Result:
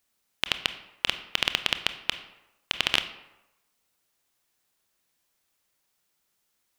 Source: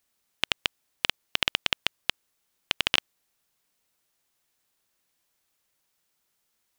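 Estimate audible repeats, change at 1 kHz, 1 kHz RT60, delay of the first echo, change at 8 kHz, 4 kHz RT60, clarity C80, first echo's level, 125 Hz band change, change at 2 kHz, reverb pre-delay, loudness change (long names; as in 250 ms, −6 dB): no echo audible, +0.5 dB, 0.95 s, no echo audible, 0.0 dB, 0.60 s, 14.5 dB, no echo audible, +0.5 dB, +0.5 dB, 23 ms, +0.5 dB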